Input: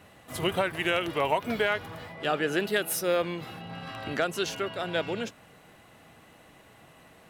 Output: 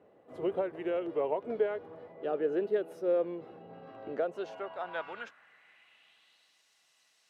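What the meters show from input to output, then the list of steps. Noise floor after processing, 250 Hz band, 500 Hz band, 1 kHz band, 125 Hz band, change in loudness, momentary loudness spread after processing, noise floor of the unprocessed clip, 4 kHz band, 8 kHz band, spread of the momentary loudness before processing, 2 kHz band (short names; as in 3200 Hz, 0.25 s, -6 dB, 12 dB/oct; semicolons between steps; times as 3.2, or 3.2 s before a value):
-70 dBFS, -5.5 dB, -2.0 dB, -9.0 dB, -15.0 dB, -4.5 dB, 16 LU, -56 dBFS, under -20 dB, under -25 dB, 12 LU, -15.0 dB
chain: band-pass sweep 440 Hz -> 5400 Hz, 4.09–6.64; gain +1 dB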